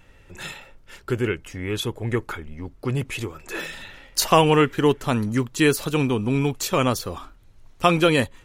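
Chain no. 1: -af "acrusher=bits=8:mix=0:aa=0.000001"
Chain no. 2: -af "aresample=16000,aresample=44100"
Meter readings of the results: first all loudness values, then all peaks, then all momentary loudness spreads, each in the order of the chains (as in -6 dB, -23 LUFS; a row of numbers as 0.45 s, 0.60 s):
-22.5 LUFS, -22.5 LUFS; -2.5 dBFS, -2.5 dBFS; 18 LU, 18 LU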